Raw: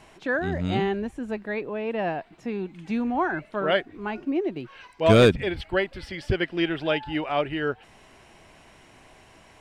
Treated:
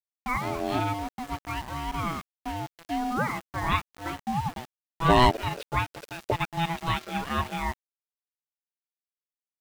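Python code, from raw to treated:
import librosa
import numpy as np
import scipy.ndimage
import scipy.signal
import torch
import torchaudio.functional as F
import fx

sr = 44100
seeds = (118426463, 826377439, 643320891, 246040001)

y = x * np.sin(2.0 * np.pi * 500.0 * np.arange(len(x)) / sr)
y = np.where(np.abs(y) >= 10.0 ** (-36.5 / 20.0), y, 0.0)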